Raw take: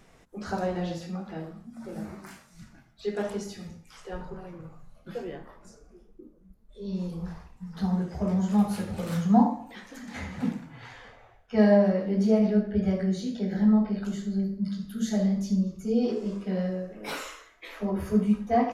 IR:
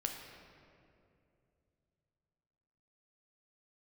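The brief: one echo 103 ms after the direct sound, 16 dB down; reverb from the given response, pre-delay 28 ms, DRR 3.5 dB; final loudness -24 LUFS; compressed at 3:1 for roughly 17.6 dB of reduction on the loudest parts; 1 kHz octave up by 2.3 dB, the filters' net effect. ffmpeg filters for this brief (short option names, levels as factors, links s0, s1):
-filter_complex "[0:a]equalizer=f=1000:t=o:g=3.5,acompressor=threshold=0.0112:ratio=3,aecho=1:1:103:0.158,asplit=2[s0][s1];[1:a]atrim=start_sample=2205,adelay=28[s2];[s1][s2]afir=irnorm=-1:irlink=0,volume=0.596[s3];[s0][s3]amix=inputs=2:normalize=0,volume=5.01"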